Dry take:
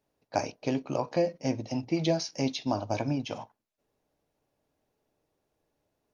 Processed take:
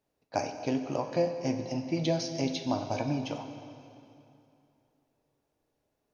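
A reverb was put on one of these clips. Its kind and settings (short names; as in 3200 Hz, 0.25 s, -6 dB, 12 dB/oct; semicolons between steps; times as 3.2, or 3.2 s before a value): plate-style reverb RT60 2.8 s, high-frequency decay 0.85×, DRR 6.5 dB; gain -2 dB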